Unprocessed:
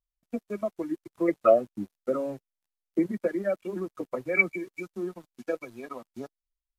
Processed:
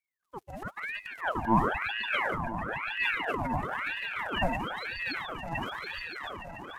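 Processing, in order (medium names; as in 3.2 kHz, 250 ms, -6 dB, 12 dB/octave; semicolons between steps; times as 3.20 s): echo with a slow build-up 145 ms, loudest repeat 5, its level -14 dB; transient shaper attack -12 dB, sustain +8 dB; ring modulator with a swept carrier 1.3 kHz, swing 75%, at 1 Hz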